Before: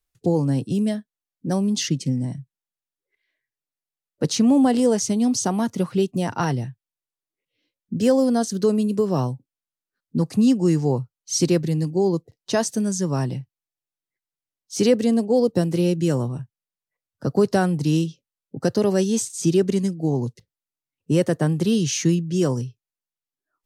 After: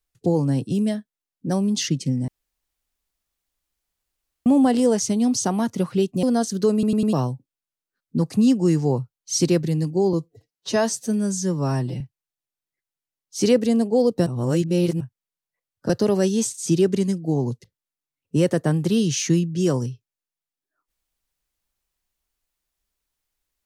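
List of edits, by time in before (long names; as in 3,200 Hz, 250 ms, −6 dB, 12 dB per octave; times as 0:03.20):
0:02.28–0:04.46: fill with room tone
0:06.23–0:08.23: remove
0:08.73: stutter in place 0.10 s, 4 plays
0:12.13–0:13.38: time-stretch 1.5×
0:15.64–0:16.38: reverse
0:17.27–0:18.65: remove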